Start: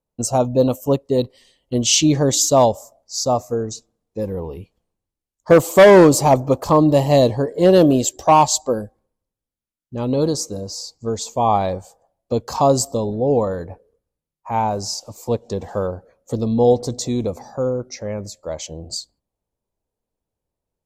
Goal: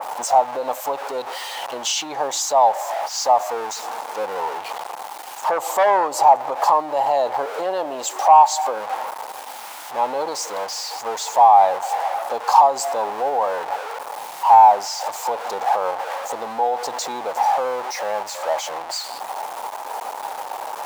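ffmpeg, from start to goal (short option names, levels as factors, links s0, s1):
-af "aeval=exprs='val(0)+0.5*0.0631*sgn(val(0))':c=same,highshelf=f=3700:g=-7.5,alimiter=limit=0.2:level=0:latency=1:release=114,highpass=f=830:t=q:w=4.9,adynamicequalizer=threshold=0.0316:dfrequency=2500:dqfactor=0.7:tfrequency=2500:tqfactor=0.7:attack=5:release=100:ratio=0.375:range=1.5:mode=cutabove:tftype=highshelf,volume=1.12"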